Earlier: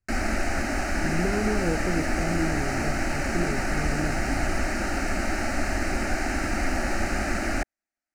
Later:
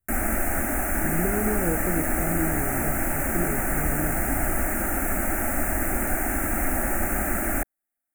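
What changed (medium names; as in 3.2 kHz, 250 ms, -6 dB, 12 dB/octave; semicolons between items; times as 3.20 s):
background: remove distance through air 99 m; master: add Butterworth band-stop 4.3 kHz, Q 0.69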